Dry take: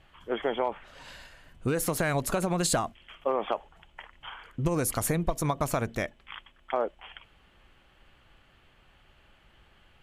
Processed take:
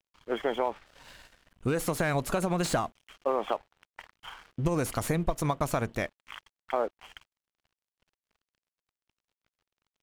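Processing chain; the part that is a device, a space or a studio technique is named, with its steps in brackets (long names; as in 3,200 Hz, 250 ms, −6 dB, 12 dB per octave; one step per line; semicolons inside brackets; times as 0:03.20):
early transistor amplifier (dead-zone distortion −51.5 dBFS; slew-rate limiting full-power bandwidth 150 Hz)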